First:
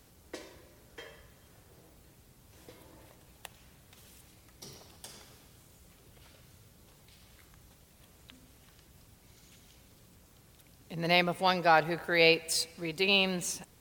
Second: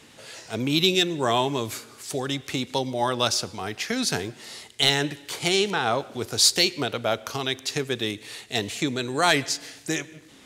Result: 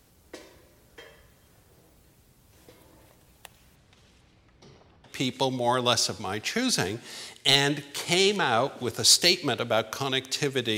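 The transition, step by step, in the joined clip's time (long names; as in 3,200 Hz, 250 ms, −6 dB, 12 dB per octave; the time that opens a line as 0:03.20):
first
0:03.75–0:05.23: low-pass filter 6,900 Hz → 1,800 Hz
0:05.13: continue with second from 0:02.47, crossfade 0.20 s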